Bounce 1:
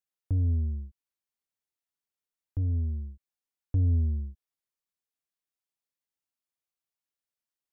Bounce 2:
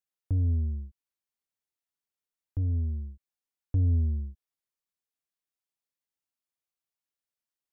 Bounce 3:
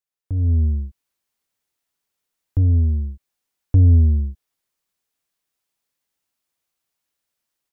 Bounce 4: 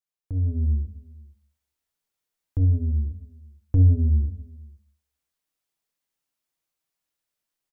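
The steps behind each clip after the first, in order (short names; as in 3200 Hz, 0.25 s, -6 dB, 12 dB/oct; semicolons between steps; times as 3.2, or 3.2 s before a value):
nothing audible
AGC gain up to 12 dB
echo 0.478 s -23.5 dB; shoebox room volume 180 m³, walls furnished, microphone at 0.53 m; gain -5 dB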